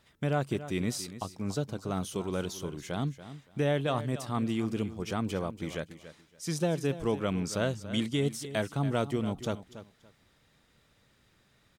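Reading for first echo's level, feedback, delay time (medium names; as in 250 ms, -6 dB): -13.5 dB, 21%, 284 ms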